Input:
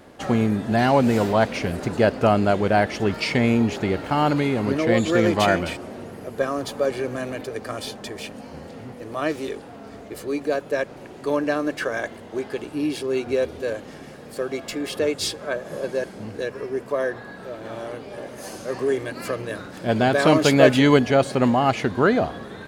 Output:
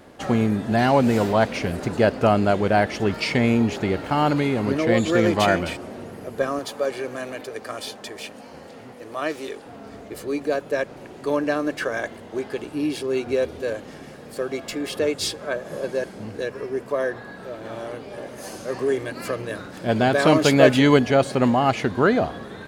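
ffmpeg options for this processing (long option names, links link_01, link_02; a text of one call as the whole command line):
ffmpeg -i in.wav -filter_complex "[0:a]asettb=1/sr,asplit=3[link_01][link_02][link_03];[link_01]atrim=end=6.594[link_04];[link_02]atrim=start=6.59:end=9.66,asetpts=PTS-STARTPTS,afade=type=in:duration=0.004:curve=qsin,afade=type=out:start_time=3.066:duration=0.004:curve=qsin,lowshelf=frequency=230:gain=-11.5[link_05];[link_03]atrim=start=9.656[link_06];[link_04][link_05]acrossfade=duration=0.004:curve1=hsin:curve2=qsin[link_07];[link_07][link_06]acrossfade=duration=0.004:curve1=qsin:curve2=hsin" out.wav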